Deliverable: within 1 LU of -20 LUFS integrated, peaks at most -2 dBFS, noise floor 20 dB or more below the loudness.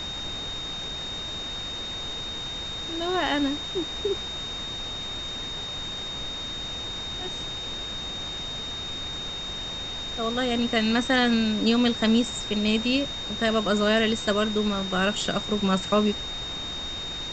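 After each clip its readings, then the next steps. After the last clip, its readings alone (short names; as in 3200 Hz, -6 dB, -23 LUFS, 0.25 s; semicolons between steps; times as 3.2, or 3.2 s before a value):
steady tone 3700 Hz; tone level -32 dBFS; noise floor -34 dBFS; noise floor target -47 dBFS; loudness -26.5 LUFS; peak -8.5 dBFS; loudness target -20.0 LUFS
-> notch 3700 Hz, Q 30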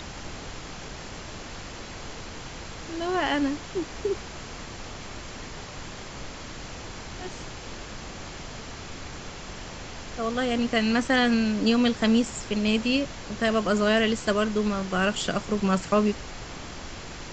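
steady tone none; noise floor -40 dBFS; noise floor target -46 dBFS
-> noise print and reduce 6 dB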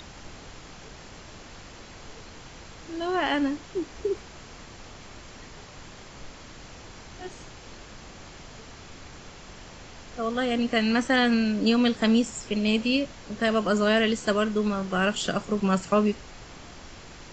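noise floor -46 dBFS; loudness -25.0 LUFS; peak -9.0 dBFS; loudness target -20.0 LUFS
-> gain +5 dB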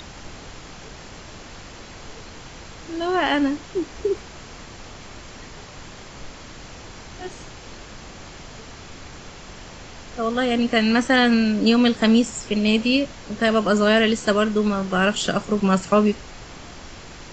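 loudness -20.0 LUFS; peak -4.0 dBFS; noise floor -41 dBFS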